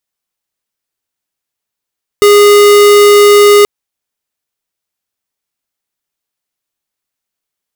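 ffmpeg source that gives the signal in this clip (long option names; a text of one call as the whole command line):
ffmpeg -f lavfi -i "aevalsrc='0.631*(2*lt(mod(411*t,1),0.5)-1)':duration=1.43:sample_rate=44100" out.wav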